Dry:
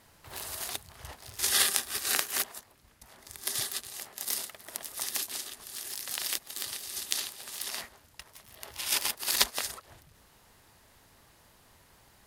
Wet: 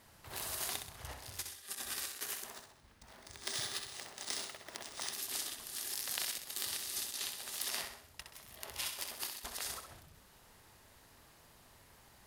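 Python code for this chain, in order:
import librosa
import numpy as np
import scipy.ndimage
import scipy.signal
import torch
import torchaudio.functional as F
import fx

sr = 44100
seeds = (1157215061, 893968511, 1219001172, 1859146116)

y = fx.resample_bad(x, sr, factor=3, down='filtered', up='hold', at=(2.52, 5.13))
y = fx.over_compress(y, sr, threshold_db=-35.0, ratio=-0.5)
y = fx.echo_feedback(y, sr, ms=64, feedback_pct=45, wet_db=-7)
y = y * 10.0 ** (-5.5 / 20.0)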